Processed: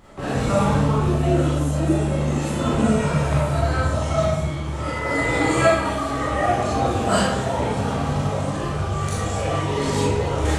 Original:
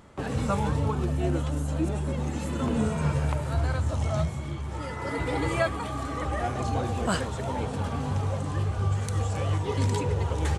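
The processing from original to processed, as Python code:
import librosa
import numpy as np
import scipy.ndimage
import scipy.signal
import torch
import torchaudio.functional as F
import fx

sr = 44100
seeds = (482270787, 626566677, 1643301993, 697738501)

y = fx.peak_eq(x, sr, hz=7200.0, db=8.5, octaves=0.31, at=(5.1, 5.7))
y = fx.rev_freeverb(y, sr, rt60_s=0.74, hf_ratio=0.9, predelay_ms=0, drr_db=-8.5)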